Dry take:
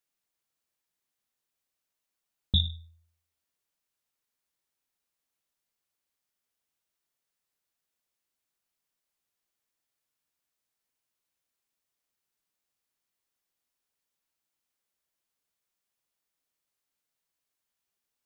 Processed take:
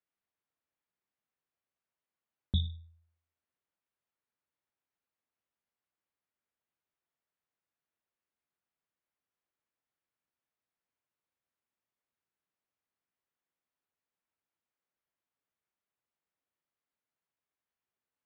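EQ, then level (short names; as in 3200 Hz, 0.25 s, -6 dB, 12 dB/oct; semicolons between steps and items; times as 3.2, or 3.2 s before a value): HPF 48 Hz; LPF 2200 Hz 12 dB/oct; -2.5 dB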